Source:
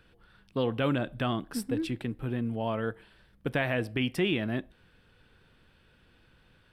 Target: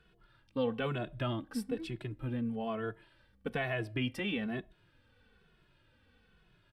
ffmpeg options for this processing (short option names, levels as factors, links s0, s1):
-filter_complex "[0:a]highshelf=f=11000:g=-9,asplit=2[s0][s1];[s1]adelay=2.3,afreqshift=-1.1[s2];[s0][s2]amix=inputs=2:normalize=1,volume=0.794"